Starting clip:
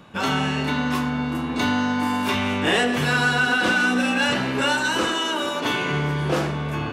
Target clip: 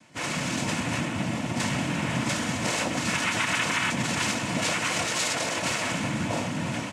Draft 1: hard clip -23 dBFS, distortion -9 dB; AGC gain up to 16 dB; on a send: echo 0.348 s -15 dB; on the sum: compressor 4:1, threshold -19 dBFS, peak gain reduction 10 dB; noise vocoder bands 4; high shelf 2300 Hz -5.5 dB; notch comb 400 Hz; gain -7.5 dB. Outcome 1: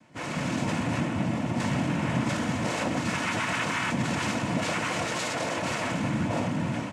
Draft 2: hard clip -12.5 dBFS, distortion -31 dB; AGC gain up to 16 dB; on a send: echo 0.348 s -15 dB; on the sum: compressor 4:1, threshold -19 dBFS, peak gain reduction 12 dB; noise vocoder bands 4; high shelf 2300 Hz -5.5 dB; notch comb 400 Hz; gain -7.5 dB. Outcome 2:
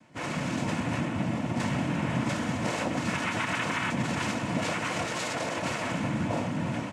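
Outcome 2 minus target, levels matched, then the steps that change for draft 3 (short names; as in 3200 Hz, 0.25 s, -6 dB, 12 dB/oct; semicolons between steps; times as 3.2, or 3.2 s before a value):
4000 Hz band -4.5 dB
change: high shelf 2300 Hz +5.5 dB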